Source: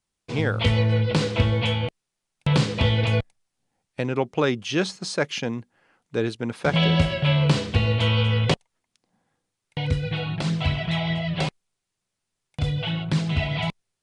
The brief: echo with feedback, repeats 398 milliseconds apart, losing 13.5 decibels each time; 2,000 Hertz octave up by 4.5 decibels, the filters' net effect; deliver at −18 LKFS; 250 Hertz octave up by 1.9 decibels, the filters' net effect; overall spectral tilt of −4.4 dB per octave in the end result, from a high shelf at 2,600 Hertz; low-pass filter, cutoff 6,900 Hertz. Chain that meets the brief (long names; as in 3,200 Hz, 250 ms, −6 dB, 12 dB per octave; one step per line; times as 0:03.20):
low-pass filter 6,900 Hz
parametric band 250 Hz +3 dB
parametric band 2,000 Hz +3.5 dB
high-shelf EQ 2,600 Hz +4.5 dB
repeating echo 398 ms, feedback 21%, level −13.5 dB
level +4 dB